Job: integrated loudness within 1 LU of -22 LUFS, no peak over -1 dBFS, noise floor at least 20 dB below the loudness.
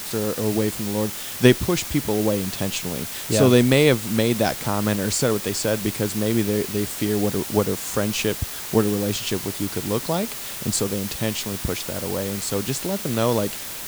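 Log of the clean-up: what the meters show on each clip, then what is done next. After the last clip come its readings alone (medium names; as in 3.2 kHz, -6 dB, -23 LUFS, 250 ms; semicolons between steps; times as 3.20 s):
noise floor -33 dBFS; noise floor target -43 dBFS; loudness -22.5 LUFS; peak level -1.5 dBFS; loudness target -22.0 LUFS
-> noise print and reduce 10 dB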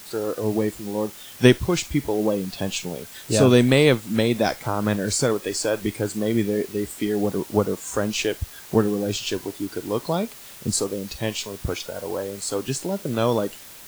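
noise floor -43 dBFS; noise floor target -44 dBFS
-> noise print and reduce 6 dB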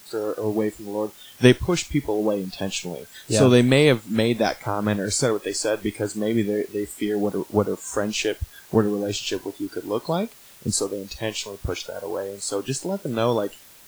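noise floor -48 dBFS; loudness -24.0 LUFS; peak level -1.5 dBFS; loudness target -22.0 LUFS
-> trim +2 dB; peak limiter -1 dBFS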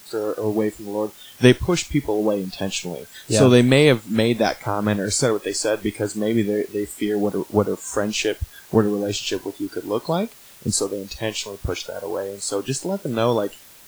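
loudness -22.0 LUFS; peak level -1.0 dBFS; noise floor -46 dBFS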